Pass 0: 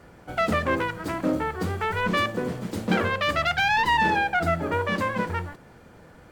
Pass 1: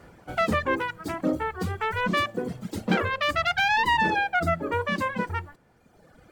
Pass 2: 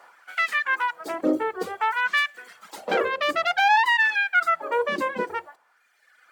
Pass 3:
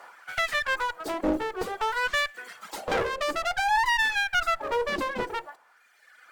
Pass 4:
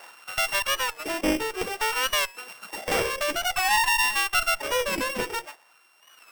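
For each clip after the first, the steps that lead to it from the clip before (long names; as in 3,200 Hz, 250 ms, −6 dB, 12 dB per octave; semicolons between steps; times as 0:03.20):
reverb reduction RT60 1.6 s
auto-filter high-pass sine 0.54 Hz 340–1,900 Hz
in parallel at −1 dB: downward compressor, threshold −32 dBFS, peak gain reduction 16 dB; on the sum: asymmetric clip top −29.5 dBFS; level −2 dB
samples sorted by size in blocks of 16 samples; wow of a warped record 45 rpm, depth 100 cents; level +1.5 dB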